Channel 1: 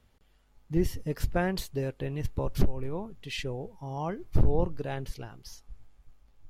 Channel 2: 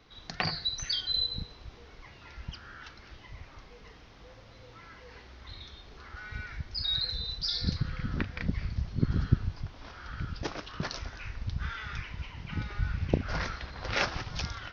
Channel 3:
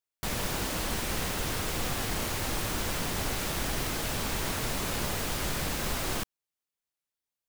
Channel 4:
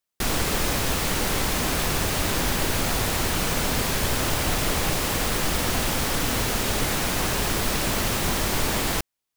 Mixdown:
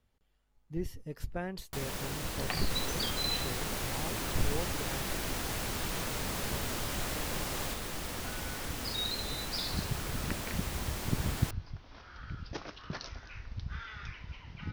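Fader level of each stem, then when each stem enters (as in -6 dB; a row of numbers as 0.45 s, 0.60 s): -9.5 dB, -5.5 dB, -6.5 dB, -14.5 dB; 0.00 s, 2.10 s, 1.50 s, 2.50 s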